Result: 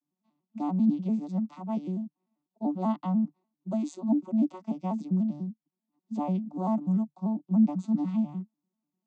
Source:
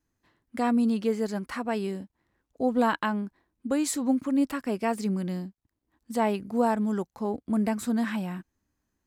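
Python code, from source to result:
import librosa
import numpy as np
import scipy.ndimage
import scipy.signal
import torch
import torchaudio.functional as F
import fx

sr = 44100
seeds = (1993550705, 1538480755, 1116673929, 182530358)

y = fx.vocoder_arp(x, sr, chord='major triad', root=50, every_ms=98)
y = fx.fixed_phaser(y, sr, hz=450.0, stages=6)
y = y * librosa.db_to_amplitude(1.5)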